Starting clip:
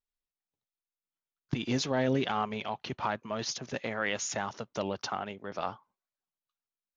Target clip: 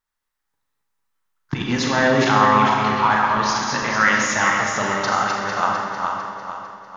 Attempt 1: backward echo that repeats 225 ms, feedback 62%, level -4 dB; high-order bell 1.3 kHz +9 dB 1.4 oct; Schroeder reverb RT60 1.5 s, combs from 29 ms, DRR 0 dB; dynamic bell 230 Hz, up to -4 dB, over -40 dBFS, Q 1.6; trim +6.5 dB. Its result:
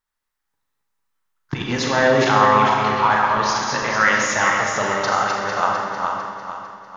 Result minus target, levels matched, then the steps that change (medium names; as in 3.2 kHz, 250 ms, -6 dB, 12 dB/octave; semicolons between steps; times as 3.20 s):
250 Hz band -3.0 dB
change: dynamic bell 510 Hz, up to -4 dB, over -40 dBFS, Q 1.6